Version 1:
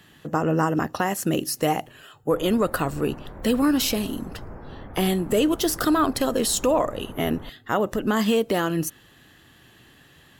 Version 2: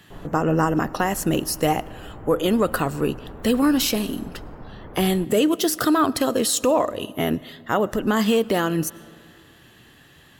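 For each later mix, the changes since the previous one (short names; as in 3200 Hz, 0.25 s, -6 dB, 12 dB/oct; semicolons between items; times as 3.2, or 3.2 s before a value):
background: entry -2.25 s; reverb: on, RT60 2.4 s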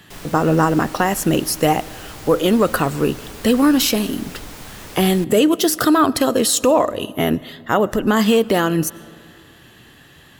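speech +4.5 dB; background: remove Gaussian blur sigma 6.5 samples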